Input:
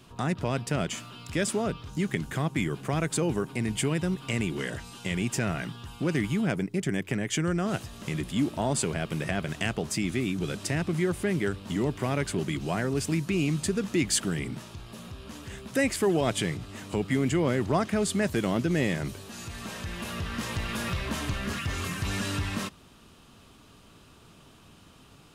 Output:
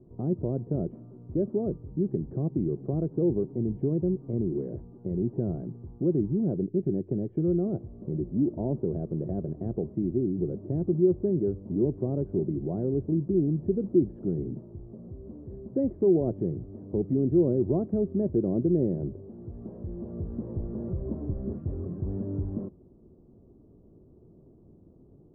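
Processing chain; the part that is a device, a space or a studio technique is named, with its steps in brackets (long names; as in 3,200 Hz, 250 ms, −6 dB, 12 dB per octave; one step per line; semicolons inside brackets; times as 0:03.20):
under water (low-pass filter 540 Hz 24 dB per octave; parametric band 360 Hz +7.5 dB 0.25 octaves)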